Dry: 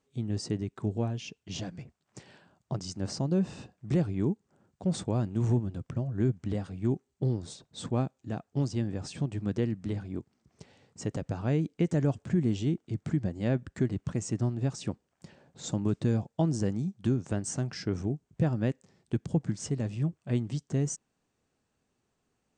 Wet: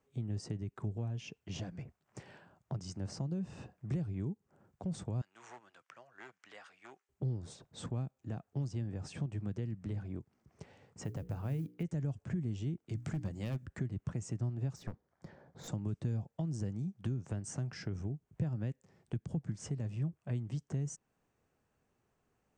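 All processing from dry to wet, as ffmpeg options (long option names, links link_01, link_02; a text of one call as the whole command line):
ffmpeg -i in.wav -filter_complex "[0:a]asettb=1/sr,asplit=3[link_01][link_02][link_03];[link_01]atrim=end=5.214[link_04];[link_02]atrim=start=5.21:end=7.09,asetpts=PTS-STARTPTS,afade=type=in:duration=0.004:curve=qsin,afade=type=out:start_time=1.876:duration=0.004:curve=qsin,asoftclip=type=hard:threshold=-20.5dB,asuperpass=centerf=3400:order=4:qfactor=0.51[link_05];[link_03]atrim=start=7.086[link_06];[link_04][link_05]acrossfade=duration=0.004:curve1=hsin:curve2=qsin[link_07];[link_07][link_06]acrossfade=duration=0.004:curve1=qsin:curve2=hsin,asettb=1/sr,asplit=3[link_08][link_09][link_10];[link_08]atrim=end=11.024[link_11];[link_09]atrim=start=11.02:end=11.83,asetpts=PTS-STARTPTS,afade=type=in:duration=0.004:curve=qsin,afade=type=out:start_time=0.806:duration=0.004:curve=qsin,lowpass=6200,bandreject=frequency=60:width_type=h:width=6,bandreject=frequency=120:width_type=h:width=6,bandreject=frequency=180:width_type=h:width=6,bandreject=frequency=240:width_type=h:width=6,bandreject=frequency=300:width_type=h:width=6,bandreject=frequency=360:width_type=h:width=6,bandreject=frequency=420:width_type=h:width=6,bandreject=frequency=480:width_type=h:width=6,acrusher=bits=8:mode=log:mix=0:aa=0.000001[link_12];[link_10]atrim=start=11.826[link_13];[link_11][link_12]acrossfade=duration=0.004:curve1=hsin:curve2=qsin[link_14];[link_14][link_13]acrossfade=duration=0.004:curve1=qsin:curve2=hsin,asettb=1/sr,asplit=3[link_15][link_16][link_17];[link_15]atrim=end=12.894[link_18];[link_16]atrim=start=12.89:end=13.66,asetpts=PTS-STARTPTS,afade=type=in:duration=0.004:curve=qsin,afade=type=out:start_time=0.766:duration=0.004:curve=qsin,bandreject=frequency=60:width_type=h:width=6,bandreject=frequency=120:width_type=h:width=6,bandreject=frequency=180:width_type=h:width=6,bandreject=frequency=240:width_type=h:width=6,bandreject=frequency=300:width_type=h:width=6,volume=23.5dB,asoftclip=hard,volume=-23.5dB,highshelf=frequency=2600:gain=11[link_19];[link_17]atrim=start=13.656[link_20];[link_18][link_19]acrossfade=duration=0.004:curve1=hsin:curve2=qsin[link_21];[link_21][link_20]acrossfade=duration=0.004:curve1=qsin:curve2=hsin,asettb=1/sr,asplit=3[link_22][link_23][link_24];[link_22]atrim=end=14.764[link_25];[link_23]atrim=start=14.76:end=15.68,asetpts=PTS-STARTPTS,afade=type=in:duration=0.004:curve=qsin,afade=type=out:start_time=0.916:duration=0.004:curve=qsin,lowpass=5300,equalizer=frequency=2700:width=5.5:gain=-15,aeval=exprs='clip(val(0),-1,0.00668)':channel_layout=same[link_26];[link_24]atrim=start=15.676[link_27];[link_25][link_26]acrossfade=duration=0.004:curve1=hsin:curve2=qsin[link_28];[link_28][link_27]acrossfade=duration=0.004:curve1=qsin:curve2=hsin,acompressor=threshold=-41dB:ratio=1.5,equalizer=frequency=250:width_type=o:width=1:gain=-4,equalizer=frequency=4000:width_type=o:width=1:gain=-8,equalizer=frequency=8000:width_type=o:width=1:gain=-6,acrossover=split=210|3000[link_29][link_30][link_31];[link_30]acompressor=threshold=-46dB:ratio=6[link_32];[link_29][link_32][link_31]amix=inputs=3:normalize=0,volume=1.5dB" out.wav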